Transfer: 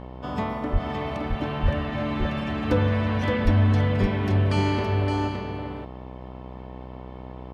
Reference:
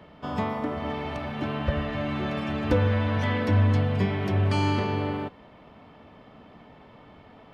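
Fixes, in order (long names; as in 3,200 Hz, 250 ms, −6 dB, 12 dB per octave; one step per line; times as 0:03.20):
hum removal 63.3 Hz, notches 17
high-pass at the plosives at 0:00.72/0:01.62/0:03.44
echo removal 567 ms −5.5 dB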